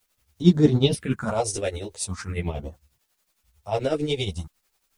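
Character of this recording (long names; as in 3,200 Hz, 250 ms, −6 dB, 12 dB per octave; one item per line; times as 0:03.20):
phaser sweep stages 4, 0.44 Hz, lowest notch 170–2,500 Hz
a quantiser's noise floor 12 bits, dither triangular
tremolo triangle 11 Hz, depth 80%
a shimmering, thickened sound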